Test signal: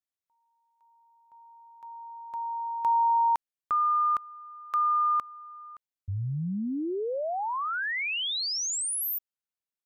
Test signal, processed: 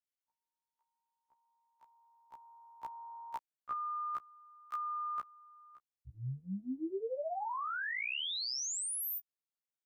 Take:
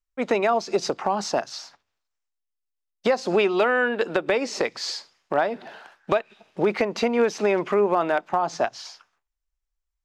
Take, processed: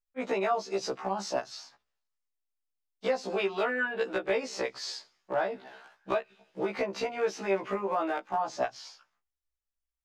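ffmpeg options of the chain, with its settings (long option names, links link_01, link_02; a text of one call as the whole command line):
ffmpeg -i in.wav -filter_complex "[0:a]acrossover=split=340|1900[link_01][link_02][link_03];[link_01]acompressor=threshold=-35dB:ratio=6:attack=56:release=85:knee=2.83:detection=peak[link_04];[link_04][link_02][link_03]amix=inputs=3:normalize=0,afftfilt=real='re*1.73*eq(mod(b,3),0)':imag='im*1.73*eq(mod(b,3),0)':win_size=2048:overlap=0.75,volume=-5dB" out.wav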